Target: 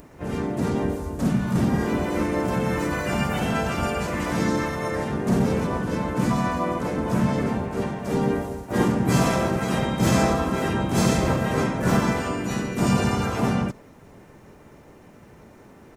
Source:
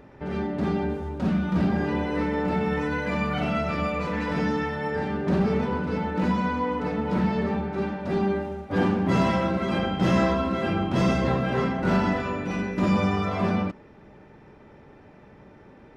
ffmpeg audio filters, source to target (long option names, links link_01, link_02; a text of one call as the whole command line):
ffmpeg -i in.wav -filter_complex "[0:a]aexciter=amount=10.4:drive=3.3:freq=6000,asplit=4[link_01][link_02][link_03][link_04];[link_02]asetrate=29433,aresample=44100,atempo=1.49831,volume=-5dB[link_05];[link_03]asetrate=33038,aresample=44100,atempo=1.33484,volume=-6dB[link_06];[link_04]asetrate=52444,aresample=44100,atempo=0.840896,volume=-3dB[link_07];[link_01][link_05][link_06][link_07]amix=inputs=4:normalize=0,volume=-1.5dB" out.wav